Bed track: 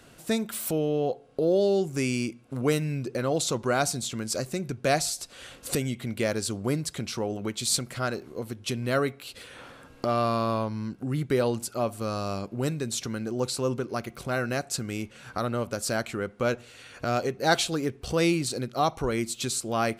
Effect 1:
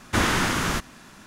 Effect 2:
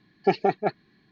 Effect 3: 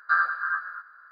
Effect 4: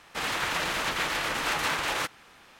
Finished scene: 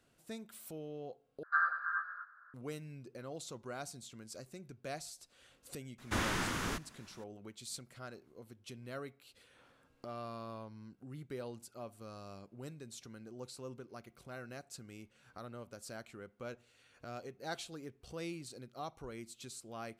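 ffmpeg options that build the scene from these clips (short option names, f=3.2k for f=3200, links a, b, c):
-filter_complex "[0:a]volume=-19dB[a];[3:a]highpass=380,lowpass=2.5k[b];[a]asplit=2[c][d];[c]atrim=end=1.434[e];[b]atrim=end=1.11,asetpts=PTS-STARTPTS,volume=-8dB[f];[d]atrim=start=2.536[g];[1:a]atrim=end=1.26,asetpts=PTS-STARTPTS,volume=-12.5dB,afade=t=in:d=0.004:c=hsin,afade=t=out:st=1.256:d=0.004:c=hsin,adelay=5980[h];[e][f]acrossfade=d=0.004:c1=hsin:c2=hsin[i];[i][g]acrossfade=d=0.004:c1=hsin:c2=hsin[j];[j][h]amix=inputs=2:normalize=0"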